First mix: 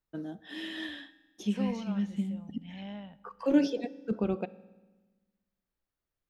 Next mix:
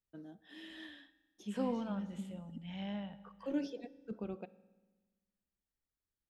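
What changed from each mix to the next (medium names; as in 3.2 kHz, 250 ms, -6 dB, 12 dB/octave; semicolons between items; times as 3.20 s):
first voice -12.0 dB; second voice: send +6.0 dB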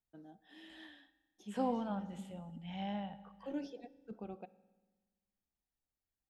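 first voice -5.0 dB; master: add peaking EQ 780 Hz +9.5 dB 0.33 oct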